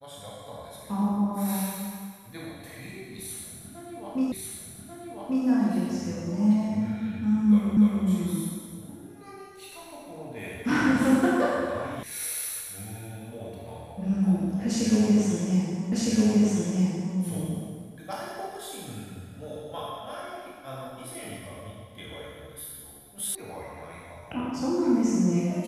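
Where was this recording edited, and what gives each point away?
4.32 repeat of the last 1.14 s
7.77 repeat of the last 0.29 s
12.03 sound cut off
15.92 repeat of the last 1.26 s
23.35 sound cut off

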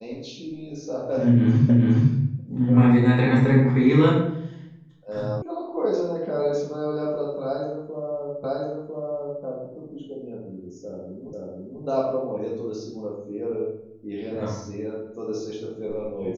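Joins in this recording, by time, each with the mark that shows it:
1.69 repeat of the last 0.42 s
5.42 sound cut off
8.44 repeat of the last 1 s
11.33 repeat of the last 0.49 s

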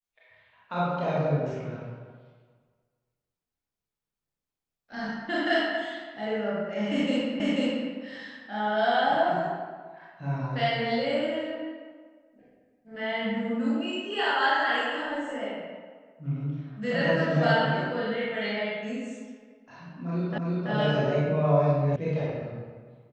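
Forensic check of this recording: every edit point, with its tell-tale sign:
7.4 repeat of the last 0.49 s
20.38 repeat of the last 0.33 s
21.96 sound cut off

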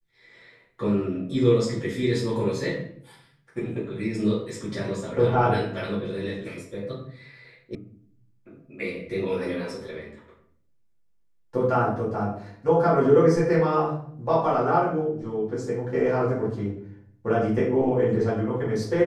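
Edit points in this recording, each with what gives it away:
7.75 sound cut off

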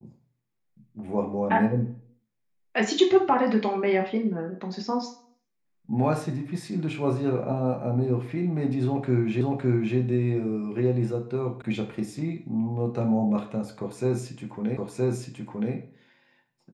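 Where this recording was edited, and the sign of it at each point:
9.41 repeat of the last 0.56 s
11.62 sound cut off
14.77 repeat of the last 0.97 s

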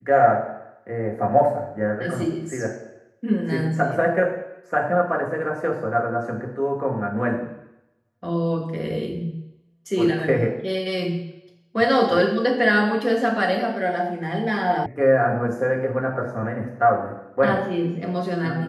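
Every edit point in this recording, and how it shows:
14.86 sound cut off

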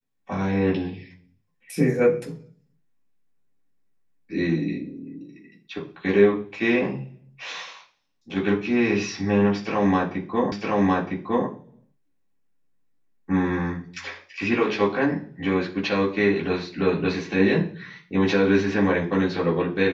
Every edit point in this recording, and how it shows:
10.52 repeat of the last 0.96 s

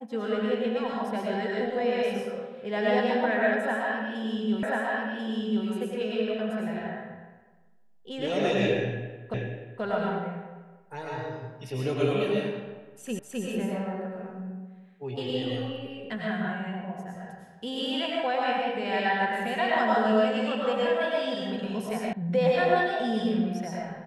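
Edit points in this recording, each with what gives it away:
4.63 repeat of the last 1.04 s
9.34 repeat of the last 0.48 s
13.19 repeat of the last 0.26 s
22.13 sound cut off

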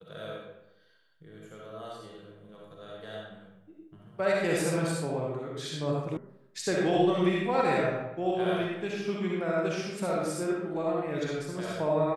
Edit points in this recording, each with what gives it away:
6.17 sound cut off

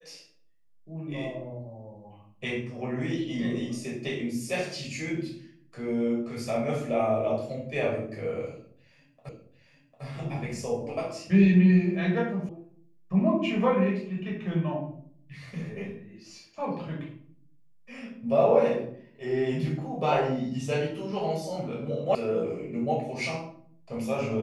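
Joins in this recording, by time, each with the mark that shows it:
9.29 repeat of the last 0.75 s
12.49 sound cut off
22.15 sound cut off

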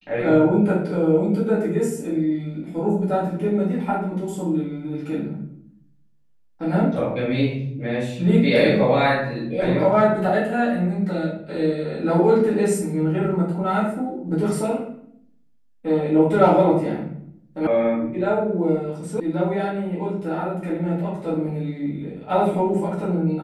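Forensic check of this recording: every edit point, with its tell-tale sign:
17.67 sound cut off
19.2 sound cut off

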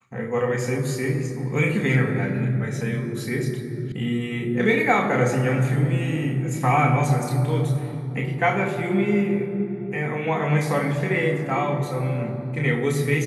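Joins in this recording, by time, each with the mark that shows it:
3.92 sound cut off

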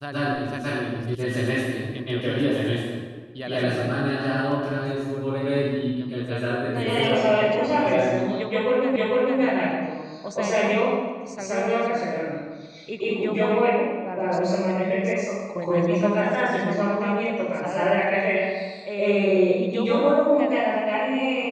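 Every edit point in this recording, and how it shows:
1.15 sound cut off
8.96 repeat of the last 0.45 s

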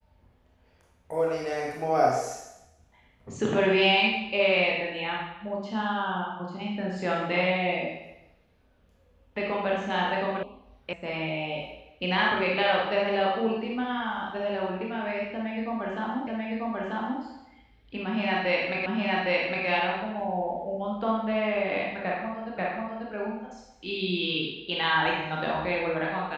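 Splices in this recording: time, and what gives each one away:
10.43 sound cut off
10.93 sound cut off
16.27 repeat of the last 0.94 s
18.86 repeat of the last 0.81 s
22.58 repeat of the last 0.54 s

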